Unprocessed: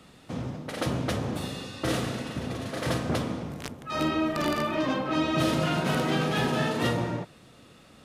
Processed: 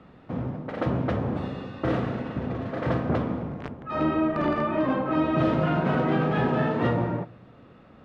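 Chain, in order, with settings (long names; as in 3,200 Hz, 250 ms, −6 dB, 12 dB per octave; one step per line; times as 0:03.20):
low-pass filter 1,600 Hz 12 dB per octave
on a send: convolution reverb RT60 0.55 s, pre-delay 4 ms, DRR 21 dB
on the sum: level +3 dB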